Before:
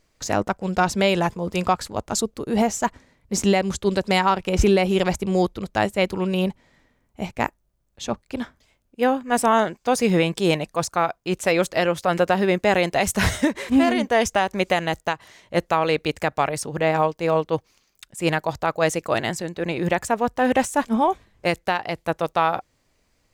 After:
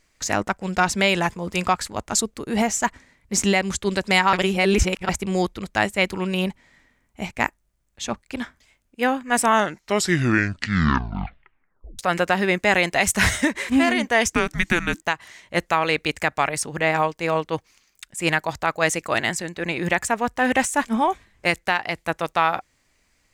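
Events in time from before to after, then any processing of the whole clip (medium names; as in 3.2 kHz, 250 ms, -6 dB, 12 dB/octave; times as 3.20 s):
4.33–5.09 s: reverse
9.51 s: tape stop 2.48 s
14.32–15.02 s: frequency shift -360 Hz
whole clip: ten-band graphic EQ 125 Hz -3 dB, 500 Hz -4 dB, 2 kHz +6 dB, 8 kHz +5 dB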